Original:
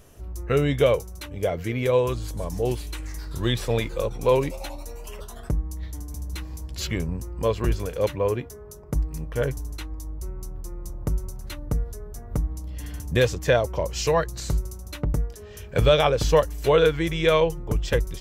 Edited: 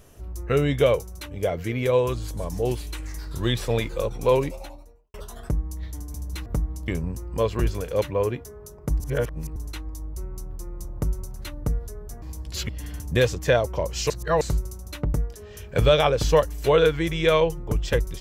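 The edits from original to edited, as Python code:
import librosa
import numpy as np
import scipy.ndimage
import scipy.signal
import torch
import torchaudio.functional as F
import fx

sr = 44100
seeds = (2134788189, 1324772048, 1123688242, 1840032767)

y = fx.studio_fade_out(x, sr, start_s=4.33, length_s=0.81)
y = fx.edit(y, sr, fx.swap(start_s=6.46, length_s=0.47, other_s=12.27, other_length_s=0.42),
    fx.reverse_span(start_s=9.05, length_s=0.56),
    fx.reverse_span(start_s=14.1, length_s=0.31), tone=tone)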